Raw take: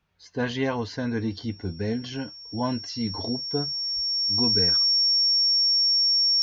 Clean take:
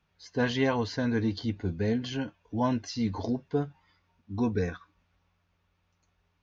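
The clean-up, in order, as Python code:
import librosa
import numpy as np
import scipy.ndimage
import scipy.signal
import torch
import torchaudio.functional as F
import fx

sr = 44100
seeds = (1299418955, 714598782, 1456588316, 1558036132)

y = fx.notch(x, sr, hz=5500.0, q=30.0)
y = fx.fix_deplosive(y, sr, at_s=(3.95,))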